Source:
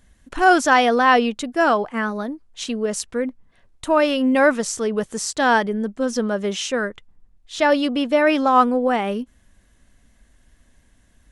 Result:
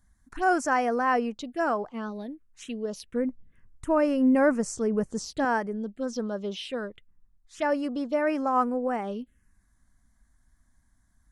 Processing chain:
0:03.14–0:05.45: low-shelf EQ 340 Hz +10 dB
phaser swept by the level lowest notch 460 Hz, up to 3,600 Hz, full sweep at −16 dBFS
level −8.5 dB

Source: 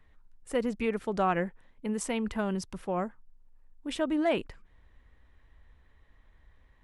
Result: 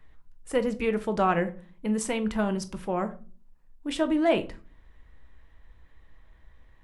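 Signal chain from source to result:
rectangular room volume 240 cubic metres, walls furnished, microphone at 0.64 metres
level +3 dB

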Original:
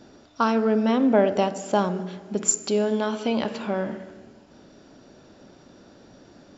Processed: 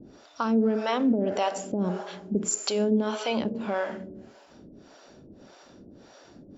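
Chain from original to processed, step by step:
brickwall limiter −16.5 dBFS, peak gain reduction 9.5 dB
two-band tremolo in antiphase 1.7 Hz, depth 100%, crossover 470 Hz
level +4.5 dB

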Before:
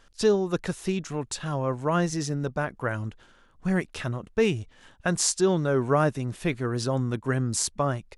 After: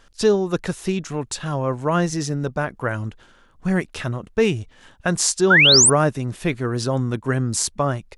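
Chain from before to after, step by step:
sound drawn into the spectrogram rise, 0:05.50–0:05.90, 1,300–10,000 Hz −17 dBFS
level +4.5 dB

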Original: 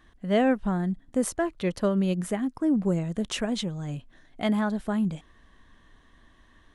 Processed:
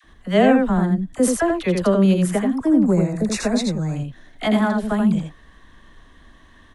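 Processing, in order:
all-pass dispersion lows, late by 42 ms, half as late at 770 Hz
0:02.84–0:03.96: Butterworth band-reject 3,100 Hz, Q 2.6
single-tap delay 83 ms −4.5 dB
level +7 dB

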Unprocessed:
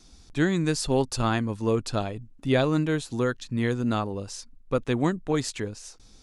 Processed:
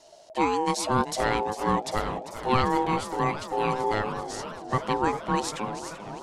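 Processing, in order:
ring modulation 640 Hz
feedback echo with a swinging delay time 392 ms, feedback 77%, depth 157 cents, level −13 dB
level +2 dB

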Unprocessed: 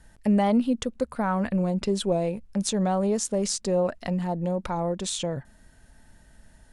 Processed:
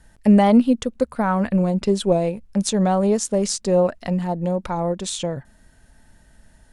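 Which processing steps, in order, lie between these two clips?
expander for the loud parts 1.5 to 1, over −32 dBFS
level +8.5 dB

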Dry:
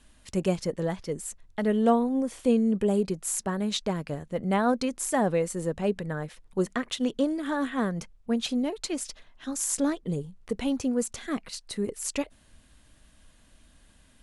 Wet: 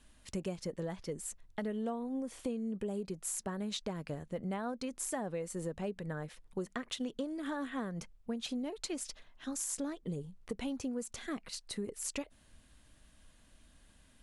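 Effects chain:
downward compressor 6 to 1, threshold −30 dBFS, peak gain reduction 13 dB
level −4.5 dB

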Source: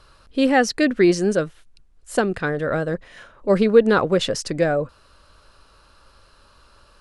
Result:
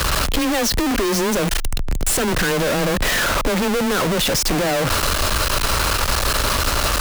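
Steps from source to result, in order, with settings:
sign of each sample alone
frequency shifter +13 Hz
level +3 dB

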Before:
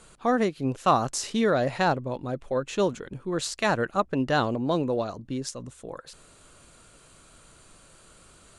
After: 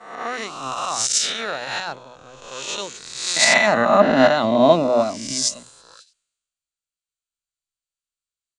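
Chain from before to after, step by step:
peak hold with a rise ahead of every peak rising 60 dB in 1.60 s
low-pass filter 8,200 Hz 24 dB per octave
hum removal 62.41 Hz, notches 7
noise gate −37 dBFS, range −12 dB
tilt shelving filter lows −8.5 dB, about 840 Hz
brickwall limiter −11.5 dBFS, peak gain reduction 11 dB
0:03.36–0:05.63: hollow resonant body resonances 230/620/2,000 Hz, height 16 dB, ringing for 30 ms
multiband upward and downward expander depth 100%
level −1 dB

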